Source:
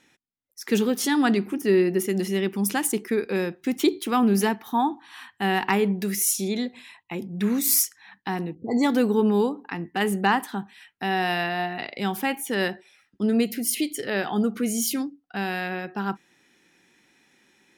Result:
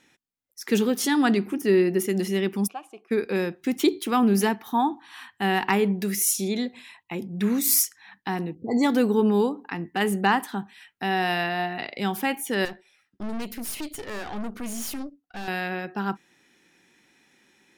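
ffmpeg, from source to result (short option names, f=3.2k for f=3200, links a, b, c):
-filter_complex "[0:a]asplit=3[a][b][c];[a]afade=t=out:st=2.66:d=0.02[d];[b]asplit=3[e][f][g];[e]bandpass=f=730:t=q:w=8,volume=0dB[h];[f]bandpass=f=1.09k:t=q:w=8,volume=-6dB[i];[g]bandpass=f=2.44k:t=q:w=8,volume=-9dB[j];[h][i][j]amix=inputs=3:normalize=0,afade=t=in:st=2.66:d=0.02,afade=t=out:st=3.1:d=0.02[k];[c]afade=t=in:st=3.1:d=0.02[l];[d][k][l]amix=inputs=3:normalize=0,asettb=1/sr,asplit=3[m][n][o];[m]atrim=end=12.654[p];[n]atrim=start=12.65:end=15.48,asetpts=PTS-STARTPTS,afade=t=in:d=0.004:c=qsin,afade=t=out:st=2.826:d=0.004:c=qsin,aeval=exprs='(tanh(31.6*val(0)+0.8)-tanh(0.8))/31.6':c=same[q];[o]atrim=start=15.476[r];[p][q]acrossfade=d=0.004:c1=hsin:c2=qsin[s];[s][r]acrossfade=d=0.004:c1=qsin:c2=hsin"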